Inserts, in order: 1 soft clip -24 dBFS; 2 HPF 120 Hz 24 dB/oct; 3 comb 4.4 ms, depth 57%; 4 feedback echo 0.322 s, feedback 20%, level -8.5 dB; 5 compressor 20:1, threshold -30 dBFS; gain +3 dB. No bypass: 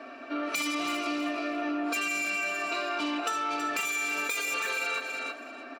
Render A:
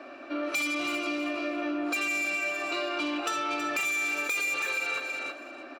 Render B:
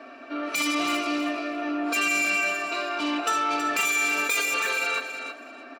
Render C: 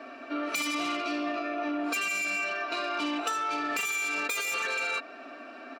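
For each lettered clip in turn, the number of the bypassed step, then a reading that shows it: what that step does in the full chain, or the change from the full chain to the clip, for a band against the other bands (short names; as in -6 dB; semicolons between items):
3, 2 kHz band +2.0 dB; 5, mean gain reduction 3.5 dB; 4, momentary loudness spread change +1 LU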